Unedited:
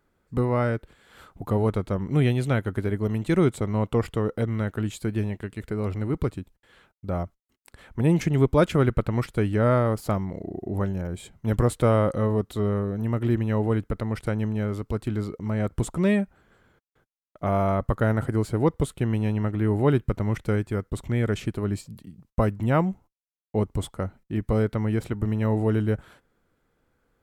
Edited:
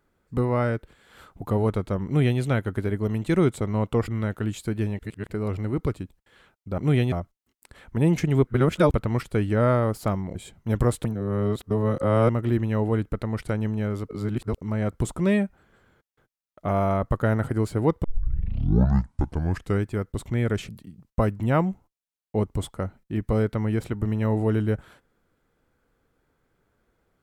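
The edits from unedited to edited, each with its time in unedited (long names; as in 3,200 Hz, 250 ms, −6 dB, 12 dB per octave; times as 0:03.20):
0:02.06–0:02.40: duplicate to 0:07.15
0:04.08–0:04.45: remove
0:05.36–0:05.68: reverse
0:08.50–0:08.97: reverse
0:10.38–0:11.13: remove
0:11.83–0:13.07: reverse
0:14.87–0:15.36: reverse
0:18.82: tape start 1.79 s
0:21.47–0:21.89: remove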